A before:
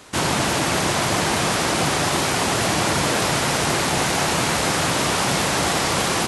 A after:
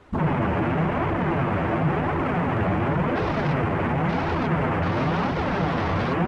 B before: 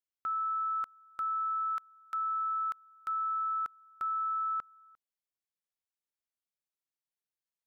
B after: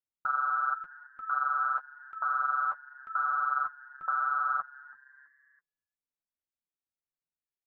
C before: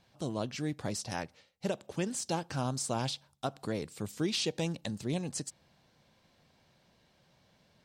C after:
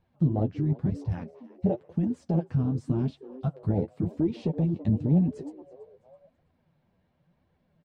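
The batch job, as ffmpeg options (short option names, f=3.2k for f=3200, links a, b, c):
-filter_complex "[0:a]afwtdn=0.0501,asplit=2[a][b];[b]acompressor=threshold=-36dB:ratio=6,volume=2.5dB[c];[a][c]amix=inputs=2:normalize=0,bass=f=250:g=7,treble=f=4k:g=-14,asplit=2[d][e];[e]adelay=12,volume=-7.5dB[f];[d][f]amix=inputs=2:normalize=0,acontrast=84,highshelf=f=2.4k:g=-9,asplit=4[g][h][i][j];[h]adelay=329,afreqshift=130,volume=-21.5dB[k];[i]adelay=658,afreqshift=260,volume=-29dB[l];[j]adelay=987,afreqshift=390,volume=-36.6dB[m];[g][k][l][m]amix=inputs=4:normalize=0,alimiter=limit=-13.5dB:level=0:latency=1:release=15,flanger=delay=1.9:depth=8.9:regen=23:speed=0.93:shape=triangular"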